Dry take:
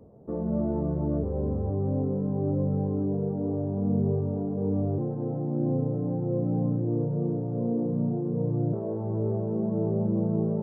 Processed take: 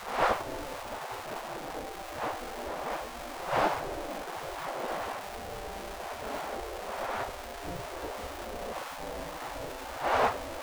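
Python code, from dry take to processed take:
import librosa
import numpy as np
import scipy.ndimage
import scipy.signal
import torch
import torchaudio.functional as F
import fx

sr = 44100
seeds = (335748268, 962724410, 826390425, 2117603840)

y = x + 0.5 * 10.0 ** (-31.0 / 20.0) * np.sign(x)
y = fx.dmg_wind(y, sr, seeds[0], corner_hz=320.0, level_db=-22.0)
y = fx.spec_gate(y, sr, threshold_db=-15, keep='weak')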